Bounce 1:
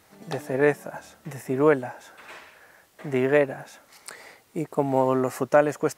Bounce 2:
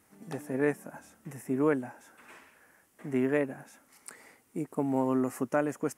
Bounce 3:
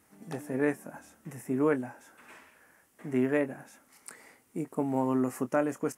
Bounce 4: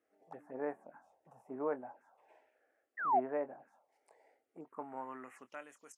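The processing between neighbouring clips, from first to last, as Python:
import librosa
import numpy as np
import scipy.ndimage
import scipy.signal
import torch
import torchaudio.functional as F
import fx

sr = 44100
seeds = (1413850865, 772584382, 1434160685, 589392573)

y1 = fx.graphic_eq_15(x, sr, hz=(250, 630, 4000, 10000), db=(8, -4, -8, 6))
y1 = y1 * librosa.db_to_amplitude(-8.0)
y2 = fx.doubler(y1, sr, ms=24.0, db=-12.0)
y3 = fx.spec_paint(y2, sr, seeds[0], shape='fall', start_s=2.97, length_s=0.23, low_hz=630.0, high_hz=1900.0, level_db=-25.0)
y3 = fx.env_phaser(y3, sr, low_hz=150.0, high_hz=4800.0, full_db=-27.0)
y3 = fx.filter_sweep_bandpass(y3, sr, from_hz=760.0, to_hz=5400.0, start_s=4.5, end_s=5.97, q=2.1)
y3 = y3 * librosa.db_to_amplitude(-1.5)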